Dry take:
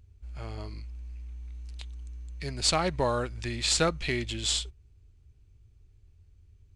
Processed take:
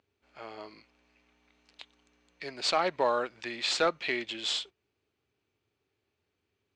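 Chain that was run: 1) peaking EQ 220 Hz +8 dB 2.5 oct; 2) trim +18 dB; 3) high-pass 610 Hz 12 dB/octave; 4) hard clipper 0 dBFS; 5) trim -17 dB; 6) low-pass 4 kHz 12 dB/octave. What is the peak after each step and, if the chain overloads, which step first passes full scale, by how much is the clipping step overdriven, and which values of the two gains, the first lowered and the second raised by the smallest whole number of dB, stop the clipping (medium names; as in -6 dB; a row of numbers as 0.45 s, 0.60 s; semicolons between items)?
-8.5 dBFS, +9.5 dBFS, +7.0 dBFS, 0.0 dBFS, -17.0 dBFS, -16.5 dBFS; step 2, 7.0 dB; step 2 +11 dB, step 5 -10 dB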